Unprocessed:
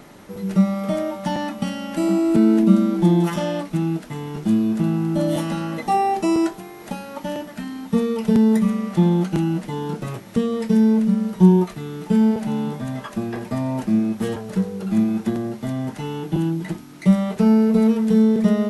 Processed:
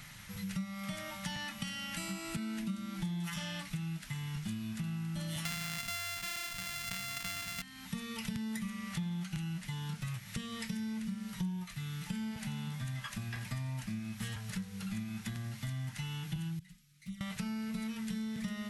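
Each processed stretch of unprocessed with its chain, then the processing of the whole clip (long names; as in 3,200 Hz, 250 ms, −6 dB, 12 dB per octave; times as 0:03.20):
0:05.45–0:07.62: samples sorted by size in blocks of 64 samples + envelope flattener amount 70%
0:16.59–0:17.21: guitar amp tone stack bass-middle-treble 6-0-2 + flanger swept by the level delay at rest 8 ms, full sweep at −26.5 dBFS
whole clip: drawn EQ curve 140 Hz 0 dB, 370 Hz −28 dB, 2,000 Hz +2 dB; downward compressor 4 to 1, threshold −36 dBFS; level −1 dB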